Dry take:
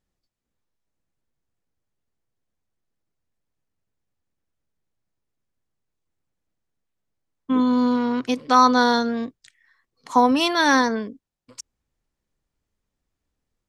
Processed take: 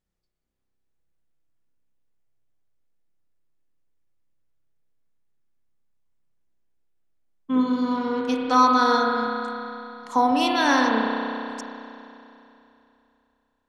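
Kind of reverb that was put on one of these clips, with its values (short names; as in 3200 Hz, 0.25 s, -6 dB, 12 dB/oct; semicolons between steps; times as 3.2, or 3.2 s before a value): spring tank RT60 3 s, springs 31 ms, chirp 30 ms, DRR -0.5 dB; gain -4.5 dB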